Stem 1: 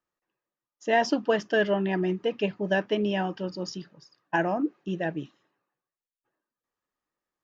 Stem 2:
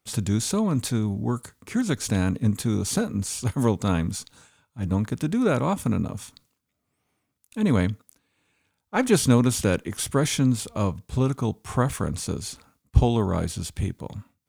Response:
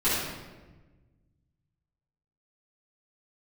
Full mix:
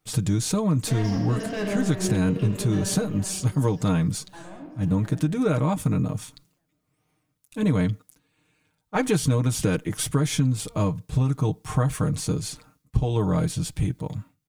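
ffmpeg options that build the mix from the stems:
-filter_complex "[0:a]asoftclip=type=tanh:threshold=-28dB,volume=-3.5dB,afade=t=out:st=2.67:d=0.27:silence=0.223872,asplit=3[a][b][c];[b]volume=-12dB[d];[c]volume=-10.5dB[e];[1:a]aecho=1:1:6.5:0.72,volume=-1dB,asplit=2[f][g];[g]apad=whole_len=327973[h];[a][h]sidechaincompress=threshold=-26dB:ratio=8:attack=16:release=297[i];[2:a]atrim=start_sample=2205[j];[d][j]afir=irnorm=-1:irlink=0[k];[e]aecho=0:1:520|1040|1560|2080:1|0.31|0.0961|0.0298[l];[i][f][k][l]amix=inputs=4:normalize=0,lowshelf=f=200:g=7,acompressor=threshold=-18dB:ratio=6"

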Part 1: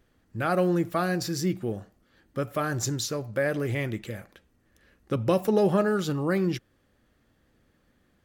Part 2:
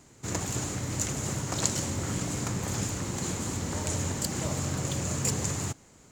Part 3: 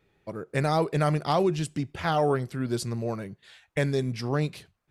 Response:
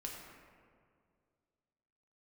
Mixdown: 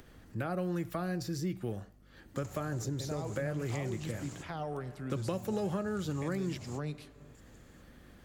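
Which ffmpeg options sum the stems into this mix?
-filter_complex "[0:a]volume=-1dB,asplit=2[a][b];[1:a]adelay=2100,volume=-15dB[c];[2:a]alimiter=limit=-17dB:level=0:latency=1,adelay=2450,volume=-11.5dB,asplit=2[d][e];[e]volume=-10dB[f];[b]apad=whole_len=362393[g];[c][g]sidechaingate=range=-31dB:threshold=-56dB:ratio=16:detection=peak[h];[3:a]atrim=start_sample=2205[i];[f][i]afir=irnorm=-1:irlink=0[j];[a][h][d][j]amix=inputs=4:normalize=0,acompressor=mode=upward:threshold=-45dB:ratio=2.5,aeval=exprs='val(0)+0.001*(sin(2*PI*50*n/s)+sin(2*PI*2*50*n/s)/2+sin(2*PI*3*50*n/s)/3+sin(2*PI*4*50*n/s)/4+sin(2*PI*5*50*n/s)/5)':c=same,acrossover=split=160|850[k][l][m];[k]acompressor=threshold=-38dB:ratio=4[n];[l]acompressor=threshold=-37dB:ratio=4[o];[m]acompressor=threshold=-45dB:ratio=4[p];[n][o][p]amix=inputs=3:normalize=0"

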